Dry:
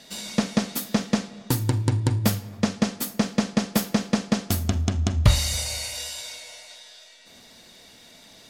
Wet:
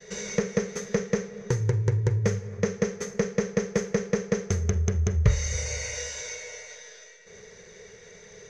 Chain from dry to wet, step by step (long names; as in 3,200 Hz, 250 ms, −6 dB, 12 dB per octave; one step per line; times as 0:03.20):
downward expander −47 dBFS
drawn EQ curve 190 Hz 0 dB, 290 Hz −26 dB, 420 Hz +14 dB, 690 Hz −11 dB, 1,300 Hz −5 dB, 2,000 Hz +1 dB, 2,900 Hz −14 dB, 4,600 Hz −20 dB
downward compressor 1.5 to 1, threshold −41 dBFS, peak gain reduction 11 dB
low-pass with resonance 6,200 Hz, resonance Q 16
level +6.5 dB